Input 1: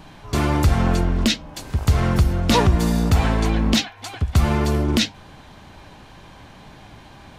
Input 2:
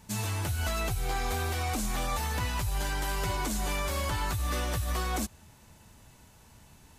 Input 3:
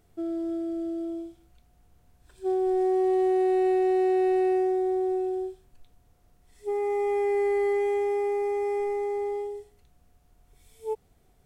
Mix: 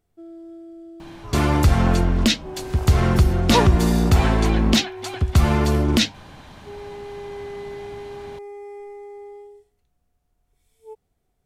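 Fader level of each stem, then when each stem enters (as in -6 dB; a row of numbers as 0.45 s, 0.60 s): +1.0 dB, mute, -9.5 dB; 1.00 s, mute, 0.00 s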